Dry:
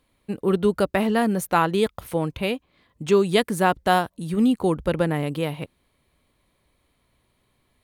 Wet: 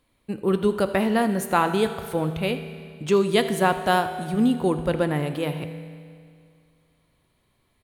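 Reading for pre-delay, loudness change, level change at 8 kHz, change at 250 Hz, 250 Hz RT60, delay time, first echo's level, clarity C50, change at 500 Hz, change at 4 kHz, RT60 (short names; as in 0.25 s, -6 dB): 5 ms, -0.5 dB, -0.5 dB, -0.5 dB, 2.2 s, 80 ms, -17.0 dB, 9.5 dB, -0.5 dB, -0.5 dB, 2.2 s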